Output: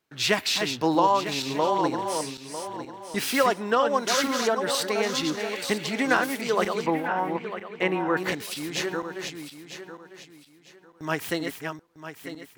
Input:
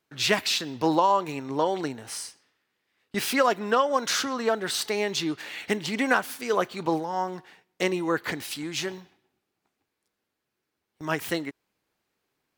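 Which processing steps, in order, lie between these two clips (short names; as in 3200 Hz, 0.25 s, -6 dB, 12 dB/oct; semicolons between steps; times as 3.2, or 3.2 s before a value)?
regenerating reverse delay 0.475 s, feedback 50%, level -5.5 dB; 6.86–8.17 resonant high shelf 3600 Hz -13 dB, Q 1.5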